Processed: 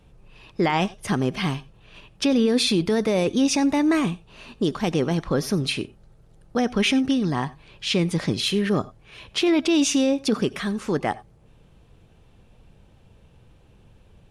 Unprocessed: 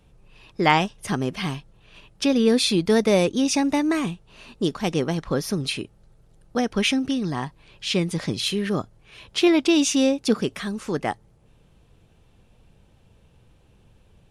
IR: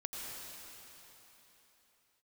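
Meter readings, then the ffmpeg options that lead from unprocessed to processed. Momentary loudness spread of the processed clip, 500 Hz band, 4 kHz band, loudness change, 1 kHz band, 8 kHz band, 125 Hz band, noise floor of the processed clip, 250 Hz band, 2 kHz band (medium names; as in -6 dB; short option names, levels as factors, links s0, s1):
10 LU, -1.0 dB, 0.0 dB, 0.0 dB, -1.5 dB, -0.5 dB, +1.5 dB, -55 dBFS, +0.5 dB, -1.0 dB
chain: -filter_complex "[0:a]highshelf=f=4600:g=-4.5,alimiter=limit=0.178:level=0:latency=1:release=15,asplit=2[s0][s1];[1:a]atrim=start_sample=2205,atrim=end_sample=4410[s2];[s1][s2]afir=irnorm=-1:irlink=0,volume=0.596[s3];[s0][s3]amix=inputs=2:normalize=0"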